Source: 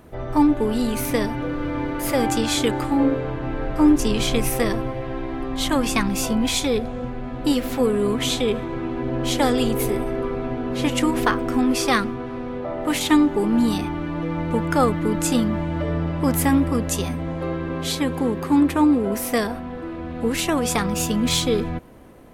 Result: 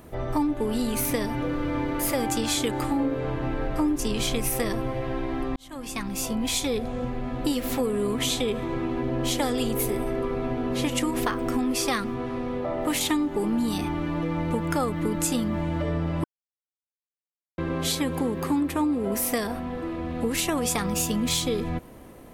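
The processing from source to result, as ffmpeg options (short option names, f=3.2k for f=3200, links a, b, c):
-filter_complex "[0:a]asplit=4[a][b][c][d];[a]atrim=end=5.56,asetpts=PTS-STARTPTS,afade=t=out:st=5.556:d=0.004:c=hsin[e];[b]atrim=start=5.56:end=16.24,asetpts=PTS-STARTPTS,afade=t=in:d=1.52,afade=t=out:st=10.676:d=0.004:c=hsin[f];[c]atrim=start=16.24:end=17.58,asetpts=PTS-STARTPTS,volume=0[g];[d]atrim=start=17.58,asetpts=PTS-STARTPTS,afade=t=in:d=0.004:c=hsin[h];[e][f][g][h]concat=n=4:v=0:a=1,highshelf=f=6.2k:g=6.5,bandreject=f=1.5k:w=24,acompressor=threshold=-23dB:ratio=4"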